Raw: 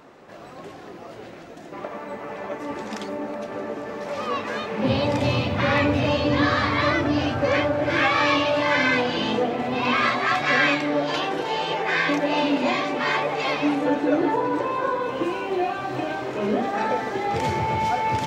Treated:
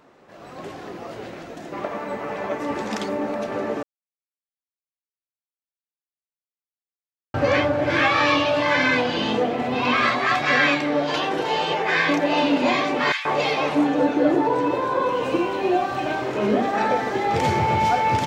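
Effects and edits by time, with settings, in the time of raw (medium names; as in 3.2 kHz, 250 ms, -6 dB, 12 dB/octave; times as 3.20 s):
3.83–7.34 s: mute
13.12–16.06 s: bands offset in time highs, lows 130 ms, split 1.6 kHz
whole clip: level rider gain up to 10 dB; trim -5.5 dB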